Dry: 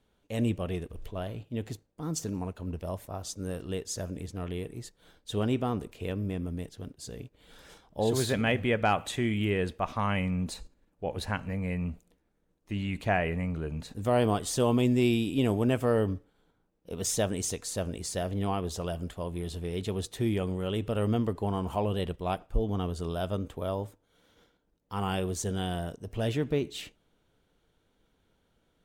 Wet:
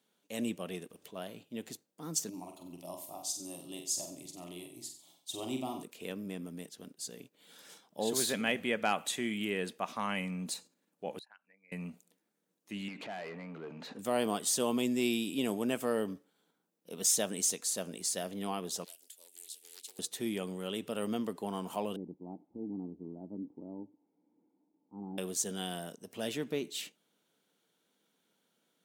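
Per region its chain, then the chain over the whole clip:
2.29–5.83 fixed phaser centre 310 Hz, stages 8 + flutter echo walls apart 7.9 m, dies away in 0.47 s
11.19–11.72 formant sharpening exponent 2 + HPF 1400 Hz + compressor 3:1, threshold -55 dBFS
12.88–13.99 air absorption 130 m + compressor, threshold -39 dBFS + overdrive pedal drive 24 dB, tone 1100 Hz, clips at -25.5 dBFS
18.84–19.99 differentiator + fixed phaser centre 440 Hz, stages 4 + Doppler distortion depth 0.44 ms
21.96–25.18 switching spikes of -33.5 dBFS + vocal tract filter u + tilt -3.5 dB/oct
whole clip: Chebyshev high-pass 190 Hz, order 3; high shelf 3800 Hz +11.5 dB; gain -5.5 dB

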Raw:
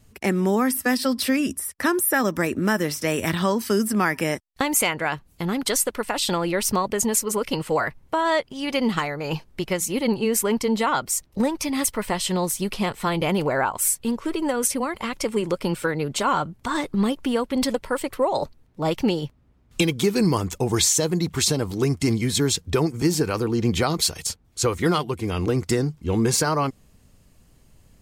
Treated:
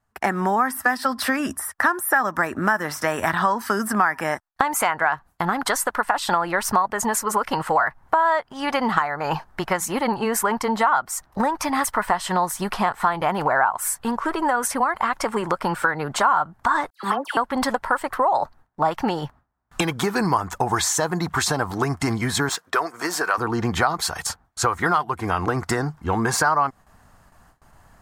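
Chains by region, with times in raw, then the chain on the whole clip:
16.9–17.37 HPF 350 Hz + gate -57 dBFS, range -15 dB + dispersion lows, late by 95 ms, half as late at 1800 Hz
22.49–23.38 HPF 490 Hz + notch 840 Hz, Q 6 + hard clip -18.5 dBFS
whole clip: gate with hold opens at -45 dBFS; band shelf 1100 Hz +15.5 dB; compressor 3:1, threshold -19 dBFS

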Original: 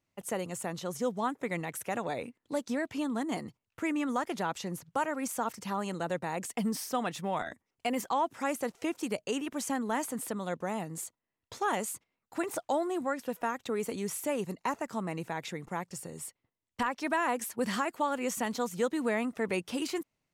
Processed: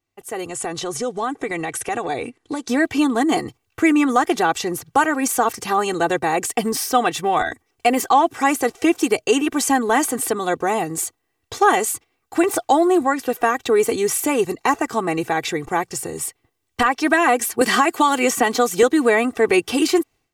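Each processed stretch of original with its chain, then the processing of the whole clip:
0.48–2.68 compressor 2.5:1, threshold -37 dBFS + steep low-pass 11000 Hz 48 dB/oct
17.61–18.83 HPF 130 Hz + three-band squash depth 100%
whole clip: comb 2.6 ms, depth 70%; AGC gain up to 14 dB

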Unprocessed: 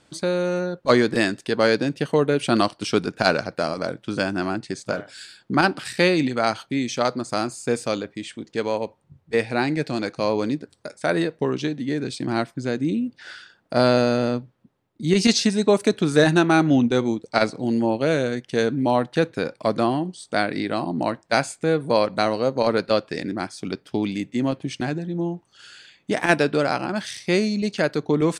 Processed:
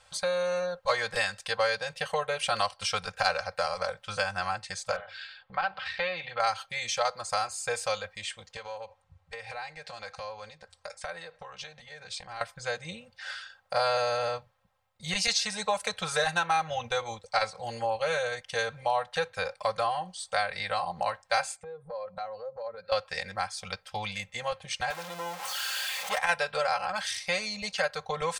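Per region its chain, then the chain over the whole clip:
4.96–6.4 LPF 3800 Hz 24 dB/oct + compressor 1.5:1, threshold -33 dBFS + notches 50/100/150/200/250 Hz
8.56–12.41 LPF 8600 Hz + compressor 8:1, threshold -32 dBFS
21.56–22.92 spectral contrast raised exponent 1.6 + HPF 51 Hz + compressor 12:1, threshold -31 dBFS
24.9–26.18 zero-crossing step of -29.5 dBFS + HPF 210 Hz 24 dB/oct + core saturation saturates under 740 Hz
whole clip: Chebyshev band-stop 110–690 Hz, order 2; comb 3.8 ms, depth 83%; compressor 2:1, threshold -28 dBFS

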